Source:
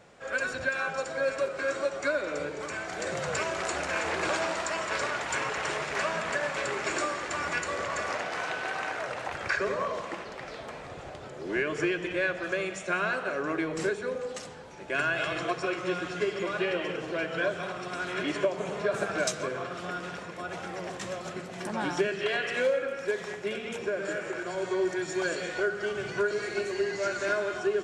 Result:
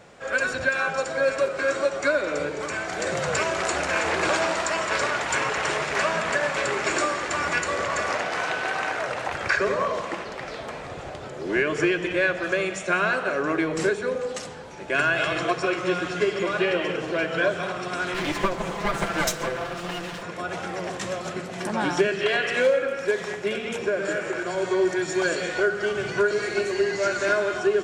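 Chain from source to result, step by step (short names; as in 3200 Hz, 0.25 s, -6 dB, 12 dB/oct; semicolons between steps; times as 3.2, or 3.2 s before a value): 18.14–20.23 minimum comb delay 5.9 ms; gain +6 dB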